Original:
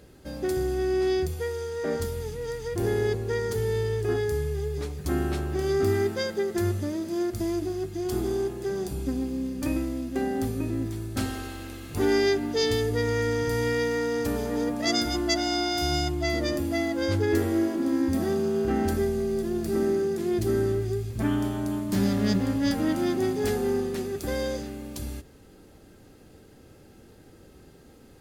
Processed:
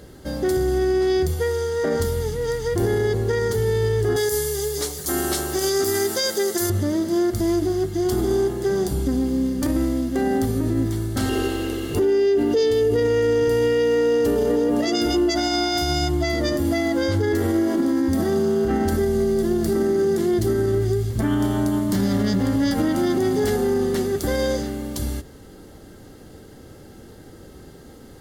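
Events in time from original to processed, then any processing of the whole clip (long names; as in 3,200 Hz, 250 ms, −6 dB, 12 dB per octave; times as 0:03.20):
0:04.16–0:06.70: bass and treble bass −12 dB, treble +15 dB
0:11.29–0:15.31: hollow resonant body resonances 400/2,800 Hz, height 13 dB, ringing for 25 ms
whole clip: notch filter 2,500 Hz, Q 5.8; brickwall limiter −21.5 dBFS; level +8.5 dB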